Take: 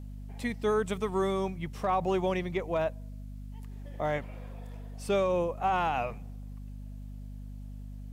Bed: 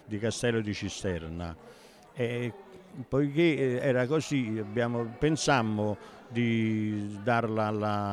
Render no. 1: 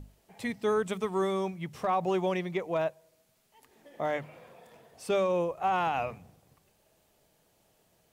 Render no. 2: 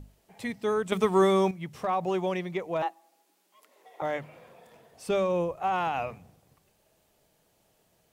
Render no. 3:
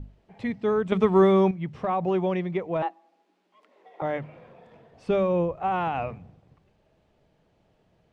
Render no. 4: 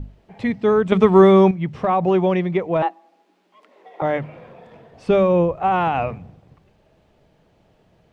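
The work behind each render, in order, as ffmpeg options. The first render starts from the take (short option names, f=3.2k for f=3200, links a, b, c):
-af "bandreject=f=50:t=h:w=6,bandreject=f=100:t=h:w=6,bandreject=f=150:t=h:w=6,bandreject=f=200:t=h:w=6,bandreject=f=250:t=h:w=6"
-filter_complex "[0:a]asettb=1/sr,asplit=3[a][b][c];[a]atrim=end=2.824[d];[b]atrim=start=2.82:end=4.02,asetpts=PTS-STARTPTS,afade=t=in:d=0.004:c=qsin,afade=t=out:st=1.196:d=0.004:c=qsin,afreqshift=180[e];[c]atrim=start=4.016[f];[d][e]acrossfade=d=0.004:c1=hsin:c2=qsin[g];[g][f]acrossfade=d=0.004:c1=qsin:c2=hsin,asettb=1/sr,asplit=3[h][i][j];[h]atrim=end=5.074[k];[i]atrim=start=5.07:end=5.58,asetpts=PTS-STARTPTS,afade=t=in:d=0.004:c=qsin,afade=t=out:st=0.506:d=0.004:c=qsin,lowshelf=f=120:g=11.5[l];[j]atrim=start=5.576[m];[k][l]acrossfade=d=0.004:c1=hsin:c2=qsin[n];[n][m]acrossfade=d=0.004:c1=qsin:c2=hsin,asplit=3[o][p][q];[o]atrim=end=0.922[r];[p]atrim=start=0.918:end=1.512,asetpts=PTS-STARTPTS,volume=7.5dB[s];[q]atrim=start=1.508[t];[r][s]acrossfade=d=0.004:c1=hsin:c2=hsin[u];[u][t]acrossfade=d=0.004:c1=hsin:c2=hsin"
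-af "lowpass=3.2k,lowshelf=f=370:g=8"
-af "volume=7.5dB,alimiter=limit=-3dB:level=0:latency=1"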